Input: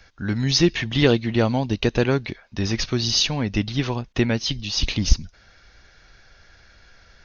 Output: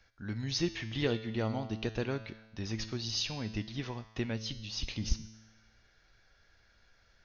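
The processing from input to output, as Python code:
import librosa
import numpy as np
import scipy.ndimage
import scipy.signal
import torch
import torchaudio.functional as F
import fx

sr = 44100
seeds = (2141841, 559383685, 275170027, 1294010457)

y = fx.comb_fb(x, sr, f0_hz=110.0, decay_s=1.1, harmonics='all', damping=0.0, mix_pct=70)
y = F.gain(torch.from_numpy(y), -5.0).numpy()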